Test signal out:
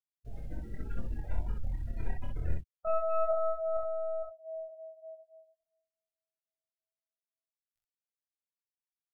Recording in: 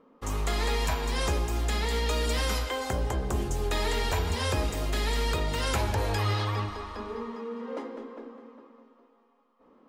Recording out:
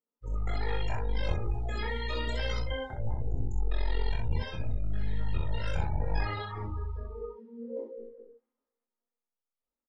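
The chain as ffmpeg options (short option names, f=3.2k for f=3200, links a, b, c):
-filter_complex "[0:a]flanger=delay=17:depth=8:speed=0.25,asubboost=boost=7:cutoff=77,aeval=exprs='0.316*(cos(1*acos(clip(val(0)/0.316,-1,1)))-cos(1*PI/2))+0.112*(cos(4*acos(clip(val(0)/0.316,-1,1)))-cos(4*PI/2))+0.00708*(cos(5*acos(clip(val(0)/0.316,-1,1)))-cos(5*PI/2))':c=same,bandreject=f=1.1k:w=6.5,acrossover=split=2200[a][b];[a]crystalizer=i=3:c=0[c];[c][b]amix=inputs=2:normalize=0,afftdn=nr=35:nf=-30,areverse,acompressor=threshold=-24dB:ratio=20,areverse,lowshelf=f=480:g=-3,aecho=1:1:26|49|64:0.596|0.237|0.668"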